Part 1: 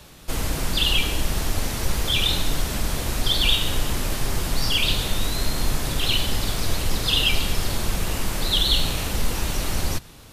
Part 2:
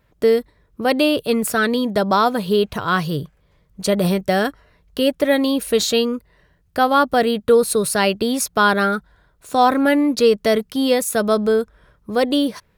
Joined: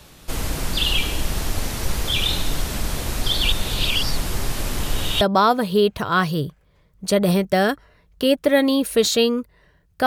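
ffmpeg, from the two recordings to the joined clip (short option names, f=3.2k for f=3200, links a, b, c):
-filter_complex "[0:a]apad=whole_dur=10.06,atrim=end=10.06,asplit=2[a][b];[a]atrim=end=3.522[c];[b]atrim=start=3.518:end=5.212,asetpts=PTS-STARTPTS,areverse[d];[1:a]atrim=start=1.968:end=6.82[e];[c][d]acrossfade=d=0.004:c1=hsin:c2=hsin[f];[f][e]acrossfade=d=0.004:c1=hsin:c2=hsin"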